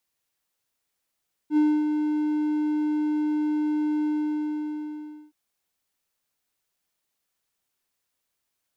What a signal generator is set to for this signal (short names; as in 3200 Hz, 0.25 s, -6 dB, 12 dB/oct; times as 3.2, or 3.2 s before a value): ADSR triangle 302 Hz, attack 69 ms, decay 0.266 s, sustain -6 dB, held 2.55 s, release 1.27 s -14 dBFS